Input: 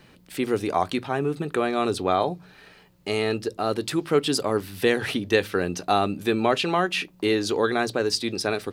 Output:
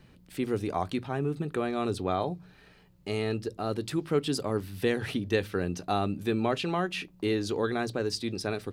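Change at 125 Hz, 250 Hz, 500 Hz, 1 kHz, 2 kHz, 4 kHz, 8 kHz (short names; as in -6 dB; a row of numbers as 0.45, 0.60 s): -0.5, -4.0, -6.5, -8.0, -8.5, -8.5, -8.5 dB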